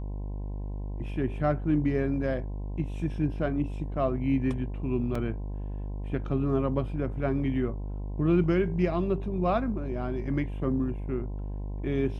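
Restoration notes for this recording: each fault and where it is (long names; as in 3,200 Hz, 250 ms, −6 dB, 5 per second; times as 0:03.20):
mains buzz 50 Hz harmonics 21 −34 dBFS
0:05.15: drop-out 3.7 ms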